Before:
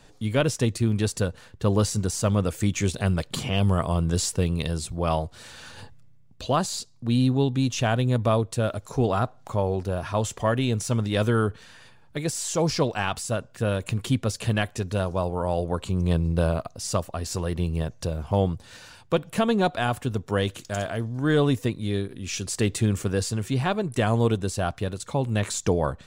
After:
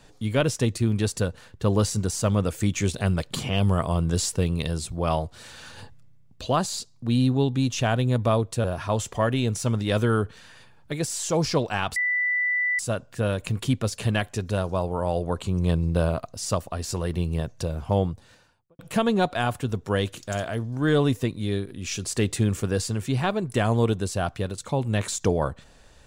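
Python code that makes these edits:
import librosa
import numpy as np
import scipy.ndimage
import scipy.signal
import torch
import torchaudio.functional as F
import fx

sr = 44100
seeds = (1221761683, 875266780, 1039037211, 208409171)

y = fx.studio_fade_out(x, sr, start_s=18.3, length_s=0.91)
y = fx.edit(y, sr, fx.cut(start_s=8.64, length_s=1.25),
    fx.insert_tone(at_s=13.21, length_s=0.83, hz=1980.0, db=-21.0), tone=tone)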